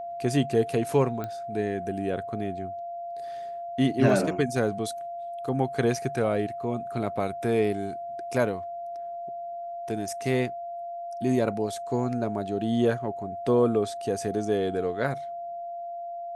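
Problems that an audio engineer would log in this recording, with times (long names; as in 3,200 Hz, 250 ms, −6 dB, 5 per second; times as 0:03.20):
whistle 690 Hz −33 dBFS
0:01.24: click −20 dBFS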